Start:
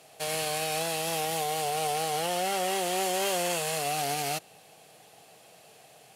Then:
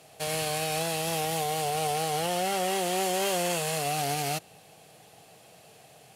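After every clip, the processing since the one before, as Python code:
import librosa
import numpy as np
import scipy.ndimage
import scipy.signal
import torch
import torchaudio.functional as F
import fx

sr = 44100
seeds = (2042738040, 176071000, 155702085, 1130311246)

y = fx.low_shelf(x, sr, hz=160.0, db=10.5)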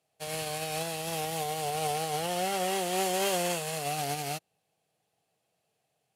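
y = fx.upward_expand(x, sr, threshold_db=-43.0, expansion=2.5)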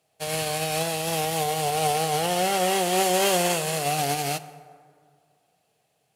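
y = fx.rev_plate(x, sr, seeds[0], rt60_s=2.1, hf_ratio=0.45, predelay_ms=0, drr_db=14.0)
y = F.gain(torch.from_numpy(y), 7.0).numpy()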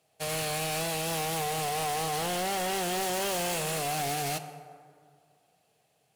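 y = np.clip(10.0 ** (29.0 / 20.0) * x, -1.0, 1.0) / 10.0 ** (29.0 / 20.0)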